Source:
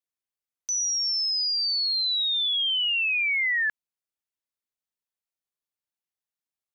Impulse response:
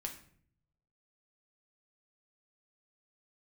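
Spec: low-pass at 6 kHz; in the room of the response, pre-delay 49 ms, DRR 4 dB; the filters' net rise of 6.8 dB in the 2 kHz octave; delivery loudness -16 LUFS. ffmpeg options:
-filter_complex "[0:a]lowpass=6000,equalizer=f=2000:t=o:g=8,asplit=2[s0][s1];[1:a]atrim=start_sample=2205,adelay=49[s2];[s1][s2]afir=irnorm=-1:irlink=0,volume=0.75[s3];[s0][s3]amix=inputs=2:normalize=0,volume=1.26"

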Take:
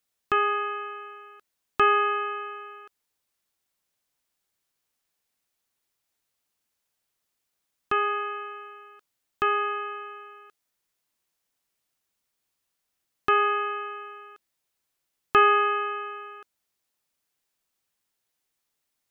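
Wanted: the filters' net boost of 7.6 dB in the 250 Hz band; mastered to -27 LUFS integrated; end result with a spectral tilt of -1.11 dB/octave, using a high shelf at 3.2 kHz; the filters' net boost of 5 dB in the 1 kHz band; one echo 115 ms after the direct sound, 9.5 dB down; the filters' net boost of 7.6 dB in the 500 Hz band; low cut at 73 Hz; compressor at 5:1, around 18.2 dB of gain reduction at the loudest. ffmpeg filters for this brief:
-af "highpass=73,equalizer=f=250:t=o:g=7.5,equalizer=f=500:t=o:g=6,equalizer=f=1000:t=o:g=5,highshelf=f=3200:g=3.5,acompressor=threshold=0.0316:ratio=5,aecho=1:1:115:0.335,volume=1.88"

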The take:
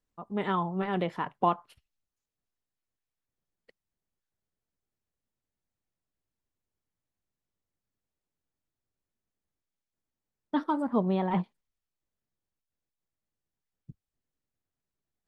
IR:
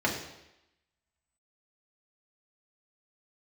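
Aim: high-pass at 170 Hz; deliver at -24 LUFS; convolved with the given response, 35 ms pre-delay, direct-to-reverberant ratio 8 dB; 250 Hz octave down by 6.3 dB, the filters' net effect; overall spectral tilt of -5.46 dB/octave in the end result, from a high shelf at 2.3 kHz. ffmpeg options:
-filter_complex "[0:a]highpass=170,equalizer=f=250:t=o:g=-7,highshelf=f=2300:g=-4.5,asplit=2[s0][s1];[1:a]atrim=start_sample=2205,adelay=35[s2];[s1][s2]afir=irnorm=-1:irlink=0,volume=0.106[s3];[s0][s3]amix=inputs=2:normalize=0,volume=2.66"

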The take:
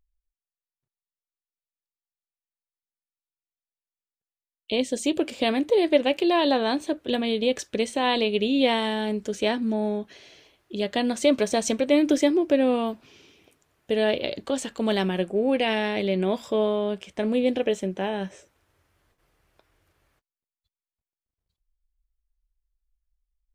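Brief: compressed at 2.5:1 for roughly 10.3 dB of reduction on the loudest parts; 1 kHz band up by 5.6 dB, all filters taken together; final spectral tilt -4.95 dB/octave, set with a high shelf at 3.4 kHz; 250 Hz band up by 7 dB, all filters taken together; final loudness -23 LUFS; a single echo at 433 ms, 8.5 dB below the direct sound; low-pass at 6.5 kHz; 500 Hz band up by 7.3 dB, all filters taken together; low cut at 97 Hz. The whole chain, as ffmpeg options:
-af "highpass=97,lowpass=6500,equalizer=f=250:t=o:g=6.5,equalizer=f=500:t=o:g=6,equalizer=f=1000:t=o:g=4.5,highshelf=f=3400:g=-3.5,acompressor=threshold=0.0631:ratio=2.5,aecho=1:1:433:0.376,volume=1.33"

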